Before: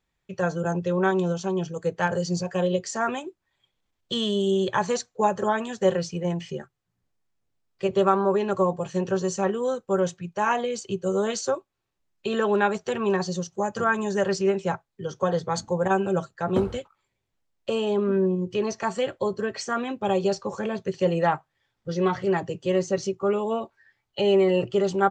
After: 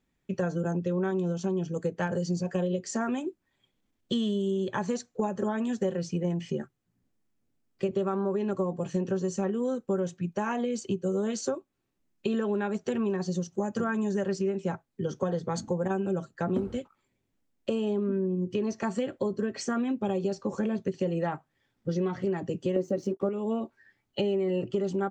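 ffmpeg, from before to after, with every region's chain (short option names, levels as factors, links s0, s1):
-filter_complex "[0:a]asettb=1/sr,asplit=3[s0][s1][s2];[s0]atrim=end=22.764[s3];[s1]atrim=start=22.76:end=23.29,asetpts=PTS-STARTPTS,afade=t=in:d=0.004:c=qsin,afade=t=out:st=0.526:d=0.004:c=qsin,aeval=exprs='sgn(val(0))*max(abs(val(0))-0.00299,0)':c=same,equalizer=f=430:t=o:w=2.2:g=13,bandreject=f=390:w=10[s4];[s2]atrim=start=23.286[s5];[s3][s4]acrossfade=d=0.004:c1=hsin:c2=qsin[s6];[s6][s5]acrossfade=d=0.004:c1=qsin:c2=hsin,equalizer=f=250:t=o:w=1:g=11,equalizer=f=1000:t=o:w=1:g=-3,equalizer=f=4000:t=o:w=1:g=-3,acompressor=threshold=0.0501:ratio=6"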